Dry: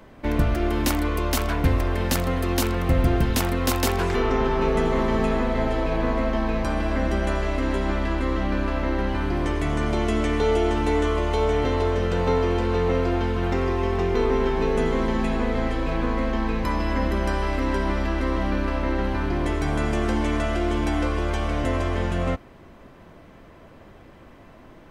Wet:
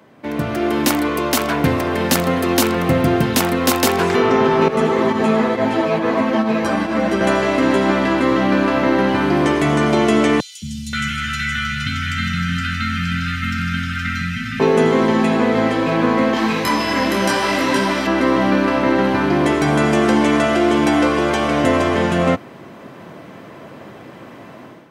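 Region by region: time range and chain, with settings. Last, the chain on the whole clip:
0:04.68–0:07.21: high-pass filter 57 Hz + fake sidechain pumping 138 BPM, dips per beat 1, −8 dB, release 126 ms + string-ensemble chorus
0:10.40–0:14.60: linear-phase brick-wall band-stop 260–1,200 Hz + comb filter 2 ms, depth 41% + three-band delay without the direct sound highs, lows, mids 220/530 ms, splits 330/4,200 Hz
0:16.34–0:18.07: high-shelf EQ 2,400 Hz +11.5 dB + micro pitch shift up and down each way 29 cents
whole clip: high-pass filter 120 Hz 24 dB per octave; automatic gain control gain up to 11.5 dB

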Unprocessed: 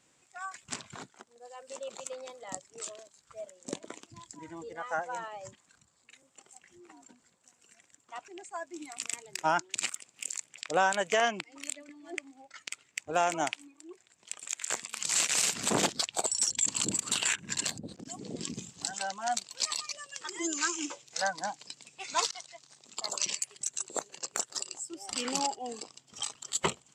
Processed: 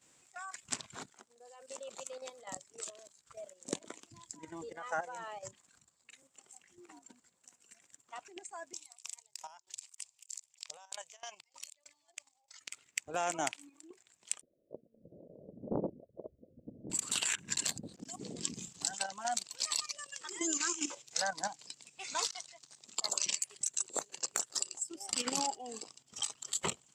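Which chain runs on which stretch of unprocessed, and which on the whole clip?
0:08.73–0:12.61: drawn EQ curve 120 Hz 0 dB, 230 Hz −30 dB, 570 Hz −3 dB, 980 Hz +5 dB, 1,400 Hz −5 dB, 2,400 Hz +1 dB, 5,100 Hz +11 dB, 9,400 Hz +7 dB + downward compressor 10 to 1, threshold −32 dBFS + tremolo with a ramp in dB decaying 3.2 Hz, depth 25 dB
0:14.41–0:16.90: Butterworth low-pass 620 Hz 96 dB per octave + highs frequency-modulated by the lows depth 0.61 ms
whole clip: high-shelf EQ 6,200 Hz +7 dB; output level in coarse steps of 11 dB

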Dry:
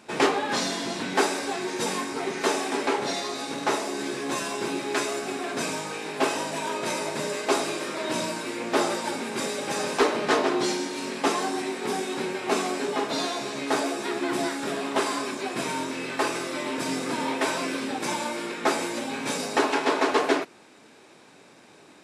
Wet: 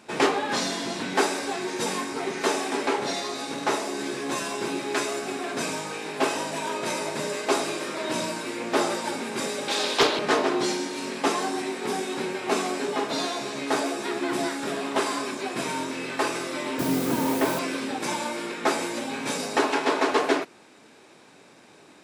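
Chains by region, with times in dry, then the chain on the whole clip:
0:09.68–0:10.19: high-pass filter 230 Hz 24 dB per octave + parametric band 3,700 Hz +12 dB 0.81 octaves + highs frequency-modulated by the lows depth 0.34 ms
0:16.79–0:17.59: spectral tilt −3 dB per octave + bit-depth reduction 6 bits, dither triangular
whole clip: no processing

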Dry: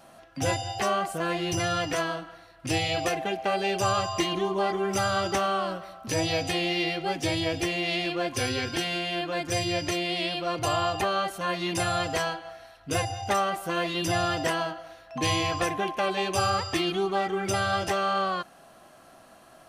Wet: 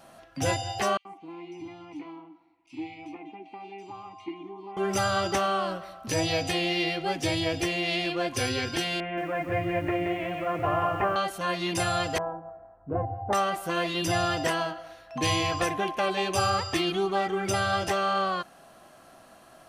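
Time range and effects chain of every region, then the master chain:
0:00.97–0:04.77: formant filter u + multiband delay without the direct sound highs, lows 80 ms, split 2,800 Hz
0:09.00–0:11.16: Butterworth low-pass 2,300 Hz + feedback echo at a low word length 175 ms, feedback 55%, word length 9 bits, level −6 dB
0:12.18–0:13.33: low-pass filter 1,000 Hz 24 dB per octave + hum removal 54.5 Hz, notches 5
whole clip: no processing

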